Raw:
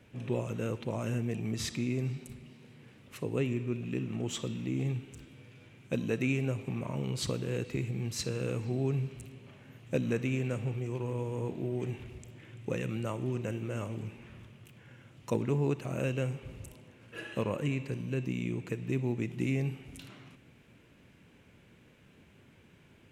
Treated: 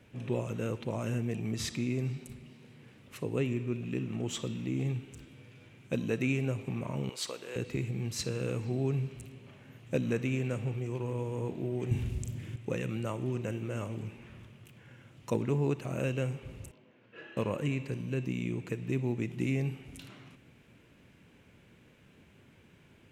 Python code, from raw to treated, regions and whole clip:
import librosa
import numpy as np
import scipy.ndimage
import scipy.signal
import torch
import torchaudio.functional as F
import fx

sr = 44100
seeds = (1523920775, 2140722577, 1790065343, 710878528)

y = fx.chain(x, sr, fx.highpass(hz=580.0, slope=12),
    fx.overload_stage(gain_db=27.0), at=(7.09, 7.56))
y = fx.chain(y, sr, fx.bass_treble(bass_db=13, treble_db=10),
    fx.doubler(ms=41.0, db=-6), at=(11.91, 12.56))
y = fx.chain(y, sr, fx.highpass(hz=190.0, slope=12),
    fx.air_absorb(metres=190.0),
    fx.detune_double(cents=22), at=(16.71, 17.37))